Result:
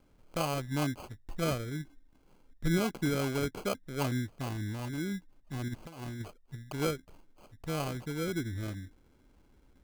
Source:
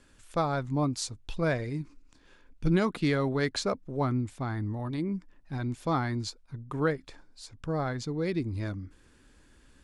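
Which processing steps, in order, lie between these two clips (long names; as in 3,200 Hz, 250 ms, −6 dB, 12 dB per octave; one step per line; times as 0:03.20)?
high-shelf EQ 3,400 Hz −11.5 dB
0:05.68–0:06.22: compressor whose output falls as the input rises −35 dBFS, ratio −0.5
decimation without filtering 24×
level −3.5 dB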